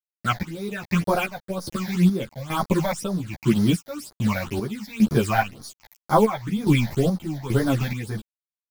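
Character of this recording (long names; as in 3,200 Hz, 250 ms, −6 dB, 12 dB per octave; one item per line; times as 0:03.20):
a quantiser's noise floor 6 bits, dither none
phaser sweep stages 8, 2 Hz, lowest notch 350–2,700 Hz
chopped level 1.2 Hz, depth 65%, duty 50%
a shimmering, thickened sound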